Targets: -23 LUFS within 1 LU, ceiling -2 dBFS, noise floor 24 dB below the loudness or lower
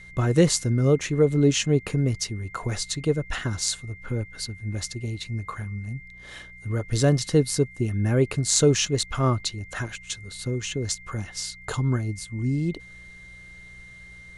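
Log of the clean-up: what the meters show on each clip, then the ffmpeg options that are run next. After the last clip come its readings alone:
hum 60 Hz; harmonics up to 180 Hz; hum level -52 dBFS; steady tone 2100 Hz; tone level -44 dBFS; loudness -25.0 LUFS; peak -3.5 dBFS; loudness target -23.0 LUFS
-> -af "bandreject=f=60:t=h:w=4,bandreject=f=120:t=h:w=4,bandreject=f=180:t=h:w=4"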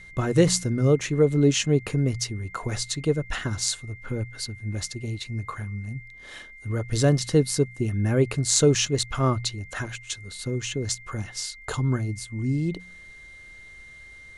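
hum none; steady tone 2100 Hz; tone level -44 dBFS
-> -af "bandreject=f=2.1k:w=30"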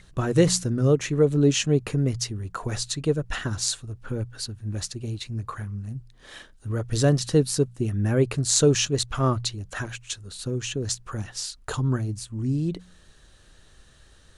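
steady tone none; loudness -25.5 LUFS; peak -3.5 dBFS; loudness target -23.0 LUFS
-> -af "volume=2.5dB,alimiter=limit=-2dB:level=0:latency=1"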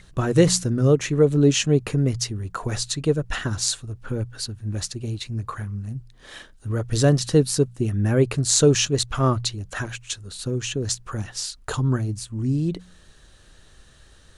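loudness -23.0 LUFS; peak -2.0 dBFS; noise floor -52 dBFS

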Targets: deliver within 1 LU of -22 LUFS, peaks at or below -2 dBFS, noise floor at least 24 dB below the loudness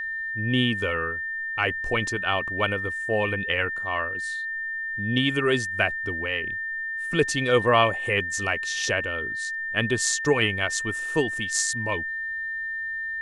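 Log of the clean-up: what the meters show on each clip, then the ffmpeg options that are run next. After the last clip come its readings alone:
steady tone 1800 Hz; tone level -28 dBFS; loudness -25.0 LUFS; peak -7.0 dBFS; loudness target -22.0 LUFS
-> -af "bandreject=f=1.8k:w=30"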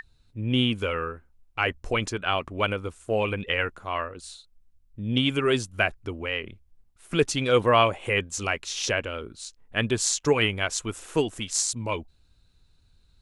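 steady tone none; loudness -26.0 LUFS; peak -7.0 dBFS; loudness target -22.0 LUFS
-> -af "volume=4dB"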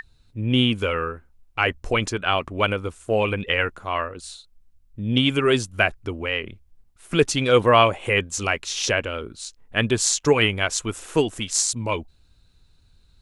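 loudness -22.0 LUFS; peak -3.0 dBFS; noise floor -58 dBFS

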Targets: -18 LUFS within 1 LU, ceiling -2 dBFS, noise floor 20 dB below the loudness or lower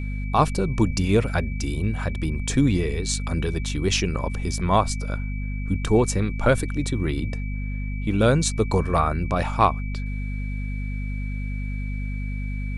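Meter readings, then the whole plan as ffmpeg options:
hum 50 Hz; harmonics up to 250 Hz; hum level -26 dBFS; steady tone 2300 Hz; tone level -40 dBFS; loudness -24.5 LUFS; peak -3.5 dBFS; loudness target -18.0 LUFS
-> -af "bandreject=f=50:t=h:w=6,bandreject=f=100:t=h:w=6,bandreject=f=150:t=h:w=6,bandreject=f=200:t=h:w=6,bandreject=f=250:t=h:w=6"
-af "bandreject=f=2.3k:w=30"
-af "volume=6.5dB,alimiter=limit=-2dB:level=0:latency=1"

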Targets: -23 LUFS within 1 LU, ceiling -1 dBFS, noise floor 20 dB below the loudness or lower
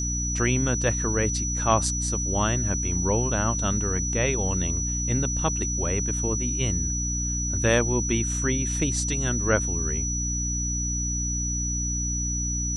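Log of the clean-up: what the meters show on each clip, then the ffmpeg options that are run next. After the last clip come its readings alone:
hum 60 Hz; harmonics up to 300 Hz; hum level -27 dBFS; steady tone 5900 Hz; tone level -28 dBFS; loudness -24.5 LUFS; peak -6.5 dBFS; loudness target -23.0 LUFS
-> -af "bandreject=f=60:t=h:w=4,bandreject=f=120:t=h:w=4,bandreject=f=180:t=h:w=4,bandreject=f=240:t=h:w=4,bandreject=f=300:t=h:w=4"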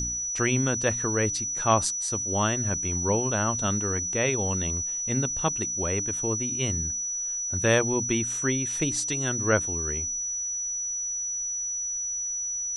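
hum none; steady tone 5900 Hz; tone level -28 dBFS
-> -af "bandreject=f=5.9k:w=30"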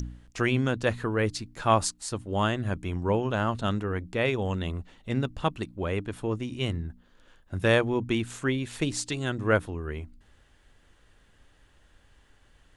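steady tone none; loudness -28.5 LUFS; peak -7.5 dBFS; loudness target -23.0 LUFS
-> -af "volume=5.5dB"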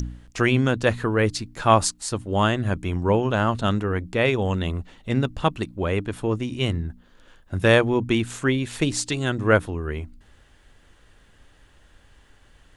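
loudness -23.0 LUFS; peak -2.0 dBFS; noise floor -56 dBFS

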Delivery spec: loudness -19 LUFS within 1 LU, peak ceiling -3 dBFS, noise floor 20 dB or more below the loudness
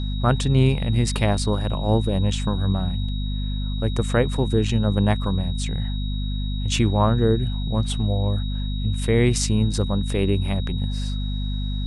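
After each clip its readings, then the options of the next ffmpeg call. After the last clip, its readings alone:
hum 50 Hz; harmonics up to 250 Hz; hum level -23 dBFS; steady tone 3800 Hz; tone level -37 dBFS; loudness -23.0 LUFS; peak -4.5 dBFS; loudness target -19.0 LUFS
-> -af "bandreject=f=50:t=h:w=6,bandreject=f=100:t=h:w=6,bandreject=f=150:t=h:w=6,bandreject=f=200:t=h:w=6,bandreject=f=250:t=h:w=6"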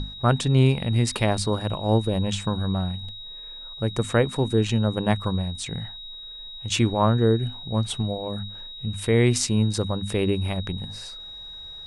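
hum none; steady tone 3800 Hz; tone level -37 dBFS
-> -af "bandreject=f=3.8k:w=30"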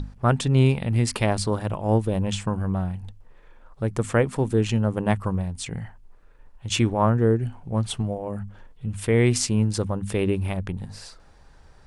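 steady tone none; loudness -24.0 LUFS; peak -6.5 dBFS; loudness target -19.0 LUFS
-> -af "volume=5dB,alimiter=limit=-3dB:level=0:latency=1"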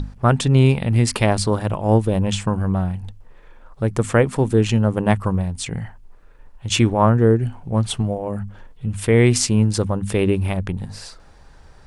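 loudness -19.5 LUFS; peak -3.0 dBFS; noise floor -46 dBFS

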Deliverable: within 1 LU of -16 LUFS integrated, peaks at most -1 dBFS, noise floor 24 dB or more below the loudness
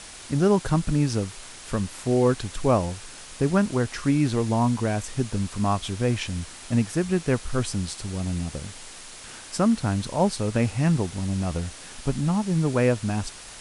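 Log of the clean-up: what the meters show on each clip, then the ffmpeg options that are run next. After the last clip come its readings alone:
noise floor -43 dBFS; noise floor target -49 dBFS; loudness -25.0 LUFS; peak -7.0 dBFS; loudness target -16.0 LUFS
-> -af "afftdn=nr=6:nf=-43"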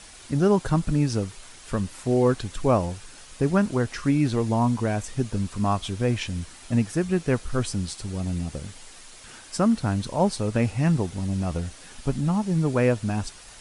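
noise floor -46 dBFS; noise floor target -50 dBFS
-> -af "afftdn=nr=6:nf=-46"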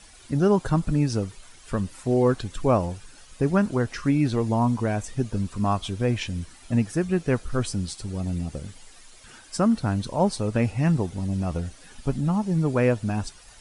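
noise floor -50 dBFS; loudness -25.5 LUFS; peak -7.0 dBFS; loudness target -16.0 LUFS
-> -af "volume=9.5dB,alimiter=limit=-1dB:level=0:latency=1"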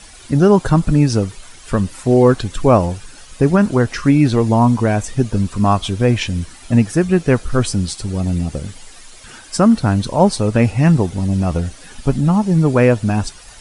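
loudness -16.0 LUFS; peak -1.0 dBFS; noise floor -40 dBFS

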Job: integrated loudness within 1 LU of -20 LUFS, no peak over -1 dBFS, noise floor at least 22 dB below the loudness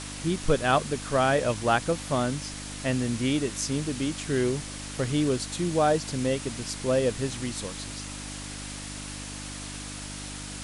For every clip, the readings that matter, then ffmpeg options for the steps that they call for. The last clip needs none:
hum 50 Hz; harmonics up to 300 Hz; hum level -38 dBFS; noise floor -38 dBFS; noise floor target -51 dBFS; loudness -28.5 LUFS; peak -10.0 dBFS; loudness target -20.0 LUFS
-> -af "bandreject=f=50:t=h:w=4,bandreject=f=100:t=h:w=4,bandreject=f=150:t=h:w=4,bandreject=f=200:t=h:w=4,bandreject=f=250:t=h:w=4,bandreject=f=300:t=h:w=4"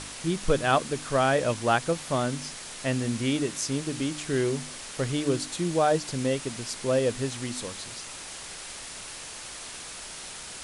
hum none; noise floor -41 dBFS; noise floor target -51 dBFS
-> -af "afftdn=nr=10:nf=-41"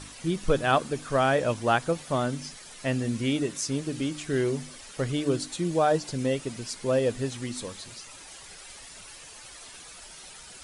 noise floor -47 dBFS; noise floor target -50 dBFS
-> -af "afftdn=nr=6:nf=-47"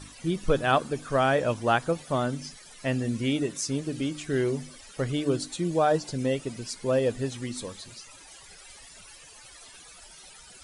noise floor -50 dBFS; loudness -28.0 LUFS; peak -10.0 dBFS; loudness target -20.0 LUFS
-> -af "volume=8dB"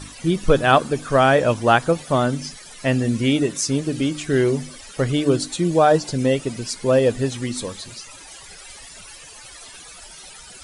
loudness -20.0 LUFS; peak -2.0 dBFS; noise floor -42 dBFS

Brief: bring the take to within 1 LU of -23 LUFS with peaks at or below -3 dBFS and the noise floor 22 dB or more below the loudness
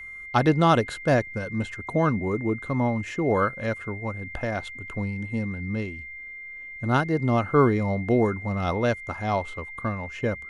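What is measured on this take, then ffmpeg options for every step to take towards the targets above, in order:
steady tone 2100 Hz; tone level -37 dBFS; loudness -25.5 LUFS; peak -6.0 dBFS; loudness target -23.0 LUFS
-> -af "bandreject=f=2.1k:w=30"
-af "volume=2.5dB"

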